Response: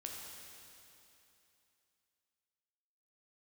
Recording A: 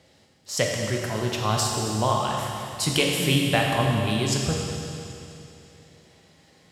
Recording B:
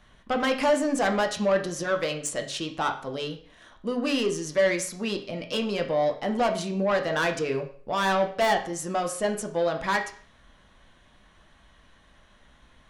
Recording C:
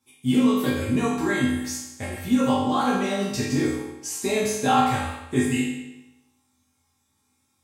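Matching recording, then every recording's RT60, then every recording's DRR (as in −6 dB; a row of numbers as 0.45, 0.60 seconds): A; 2.9, 0.50, 0.95 seconds; −1.0, 3.5, −9.5 decibels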